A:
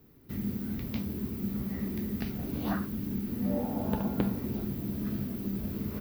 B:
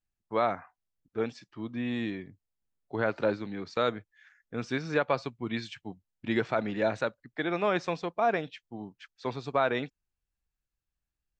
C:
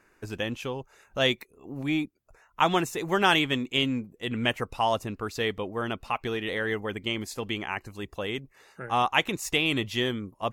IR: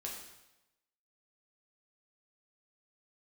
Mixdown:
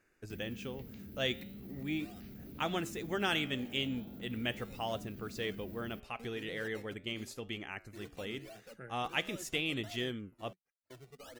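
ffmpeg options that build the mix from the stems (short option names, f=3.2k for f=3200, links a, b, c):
-filter_complex "[0:a]volume=-11dB[a];[1:a]acrusher=samples=19:mix=1:aa=0.000001:lfo=1:lforange=19:lforate=1.4,asoftclip=type=hard:threshold=-27dB,asplit=2[b][c];[c]adelay=2.1,afreqshift=2[d];[b][d]amix=inputs=2:normalize=1,adelay=1650,volume=-14.5dB[e];[2:a]flanger=delay=7.4:depth=9.7:regen=-88:speed=0.4:shape=triangular,volume=-4.5dB[f];[a][e]amix=inputs=2:normalize=0,agate=range=-21dB:threshold=-59dB:ratio=16:detection=peak,alimiter=level_in=17dB:limit=-24dB:level=0:latency=1:release=25,volume=-17dB,volume=0dB[g];[f][g]amix=inputs=2:normalize=0,equalizer=f=980:t=o:w=0.58:g=-9"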